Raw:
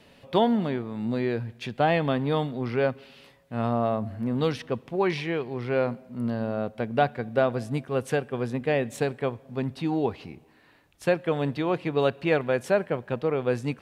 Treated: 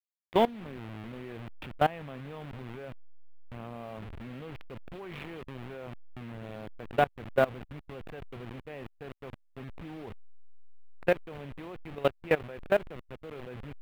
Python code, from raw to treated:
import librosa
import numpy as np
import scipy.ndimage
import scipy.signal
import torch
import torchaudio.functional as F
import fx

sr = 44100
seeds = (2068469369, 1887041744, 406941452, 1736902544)

y = fx.delta_hold(x, sr, step_db=-27.0)
y = fx.level_steps(y, sr, step_db=21)
y = fx.high_shelf_res(y, sr, hz=4100.0, db=-12.0, q=1.5)